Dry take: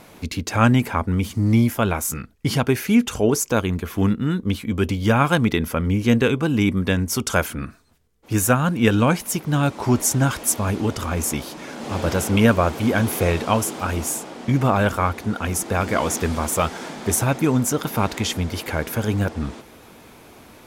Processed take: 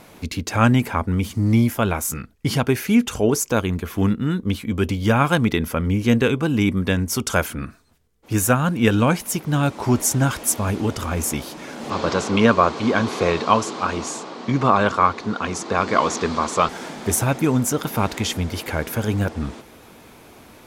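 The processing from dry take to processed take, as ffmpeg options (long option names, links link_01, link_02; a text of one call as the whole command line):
ffmpeg -i in.wav -filter_complex "[0:a]asettb=1/sr,asplit=3[link_01][link_02][link_03];[link_01]atrim=end=11.904[link_04];[link_02]atrim=start=11.9:end=16.69,asetpts=PTS-STARTPTS,afade=type=in:duration=0.004:curve=qsin,afade=type=out:start_time=4.786:duration=0.004:curve=qsin,highpass=140,equalizer=frequency=420:width_type=q:width=4:gain=3,equalizer=frequency=1100:width_type=q:width=4:gain=9,equalizer=frequency=4200:width_type=q:width=4:gain=7,lowpass=frequency=7100:width=0.5412,lowpass=frequency=7100:width=1.3066[link_05];[link_03]atrim=start=16.686[link_06];[link_04][link_05]acrossfade=duration=0.004:curve1=hsin:curve2=qsin[link_07];[link_07][link_06]acrossfade=duration=0.004:curve1=qsin:curve2=hsin" out.wav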